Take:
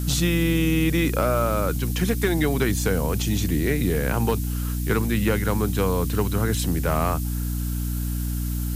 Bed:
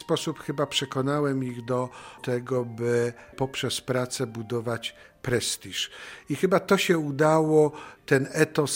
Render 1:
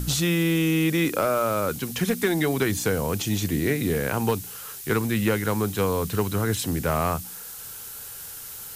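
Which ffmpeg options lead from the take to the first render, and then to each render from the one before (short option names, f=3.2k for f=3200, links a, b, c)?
-af "bandreject=f=60:t=h:w=4,bandreject=f=120:t=h:w=4,bandreject=f=180:t=h:w=4,bandreject=f=240:t=h:w=4,bandreject=f=300:t=h:w=4"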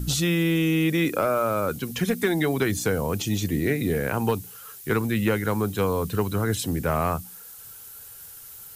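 -af "afftdn=nr=8:nf=-39"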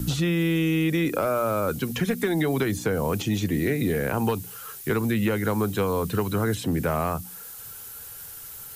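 -filter_complex "[0:a]acrossover=split=100|1200|2800[a][b][c][d];[a]acompressor=threshold=-43dB:ratio=4[e];[b]acompressor=threshold=-25dB:ratio=4[f];[c]acompressor=threshold=-38dB:ratio=4[g];[d]acompressor=threshold=-42dB:ratio=4[h];[e][f][g][h]amix=inputs=4:normalize=0,asplit=2[i][j];[j]alimiter=limit=-23dB:level=0:latency=1:release=243,volume=-2dB[k];[i][k]amix=inputs=2:normalize=0"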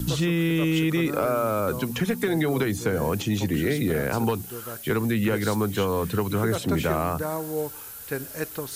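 -filter_complex "[1:a]volume=-9.5dB[a];[0:a][a]amix=inputs=2:normalize=0"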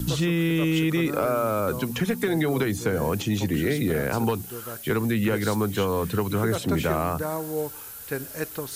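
-af anull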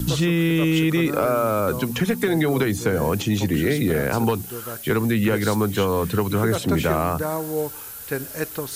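-af "volume=3.5dB"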